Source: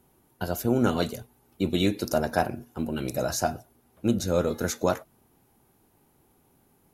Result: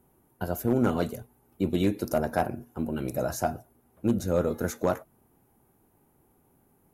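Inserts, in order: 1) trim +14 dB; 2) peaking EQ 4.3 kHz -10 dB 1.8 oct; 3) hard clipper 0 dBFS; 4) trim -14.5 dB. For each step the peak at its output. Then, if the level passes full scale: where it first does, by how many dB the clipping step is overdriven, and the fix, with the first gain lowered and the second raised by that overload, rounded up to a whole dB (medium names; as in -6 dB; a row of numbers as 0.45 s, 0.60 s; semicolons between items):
+5.5 dBFS, +4.5 dBFS, 0.0 dBFS, -14.5 dBFS; step 1, 4.5 dB; step 1 +9 dB, step 4 -9.5 dB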